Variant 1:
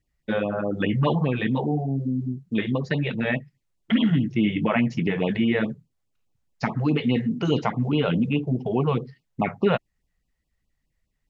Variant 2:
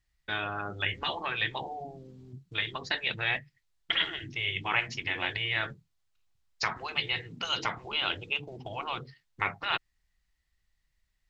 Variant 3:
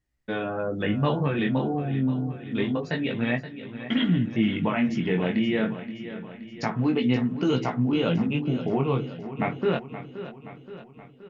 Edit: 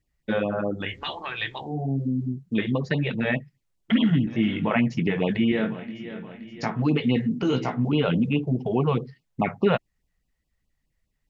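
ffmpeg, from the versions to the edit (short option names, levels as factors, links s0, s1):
-filter_complex "[2:a]asplit=3[s0][s1][s2];[0:a]asplit=5[s3][s4][s5][s6][s7];[s3]atrim=end=0.91[s8];[1:a]atrim=start=0.67:end=1.86[s9];[s4]atrim=start=1.62:end=4.272[s10];[s0]atrim=start=4.268:end=4.712[s11];[s5]atrim=start=4.708:end=5.522[s12];[s1]atrim=start=5.518:end=6.822[s13];[s6]atrim=start=6.818:end=7.432[s14];[s2]atrim=start=7.428:end=7.852[s15];[s7]atrim=start=7.848[s16];[s8][s9]acrossfade=d=0.24:c1=tri:c2=tri[s17];[s17][s10]acrossfade=d=0.24:c1=tri:c2=tri[s18];[s18][s11]acrossfade=d=0.004:c1=hsin:c2=hsin[s19];[s19][s12]acrossfade=d=0.004:c1=hsin:c2=hsin[s20];[s20][s13]acrossfade=d=0.004:c1=hsin:c2=hsin[s21];[s21][s14]acrossfade=d=0.004:c1=hsin:c2=hsin[s22];[s22][s15]acrossfade=d=0.004:c1=hsin:c2=hsin[s23];[s23][s16]acrossfade=d=0.004:c1=hsin:c2=hsin"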